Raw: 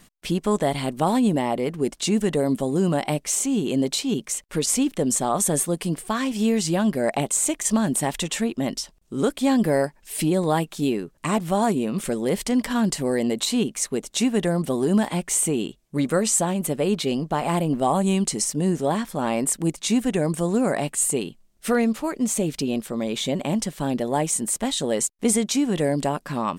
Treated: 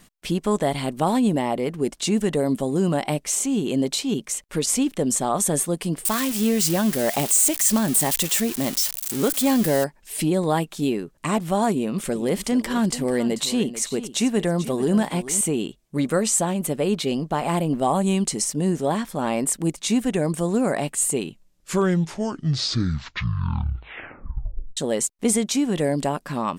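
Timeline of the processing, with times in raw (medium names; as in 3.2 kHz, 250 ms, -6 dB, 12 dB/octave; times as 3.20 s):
6.05–9.84 s: zero-crossing glitches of -16.5 dBFS
11.71–15.41 s: delay 439 ms -13.5 dB
21.11 s: tape stop 3.66 s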